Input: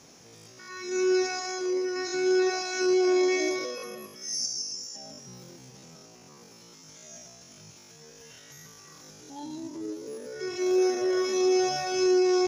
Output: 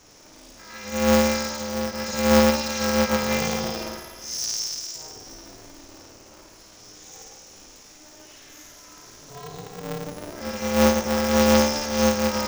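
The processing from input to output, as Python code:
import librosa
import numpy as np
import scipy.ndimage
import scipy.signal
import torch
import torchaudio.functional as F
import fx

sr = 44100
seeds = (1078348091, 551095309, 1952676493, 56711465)

y = fx.room_flutter(x, sr, wall_m=9.2, rt60_s=1.2)
y = fx.cheby_harmonics(y, sr, harmonics=(3,), levels_db=(-16,), full_scale_db=-11.0)
y = y * np.sign(np.sin(2.0 * np.pi * 150.0 * np.arange(len(y)) / sr))
y = y * 10.0 ** (5.5 / 20.0)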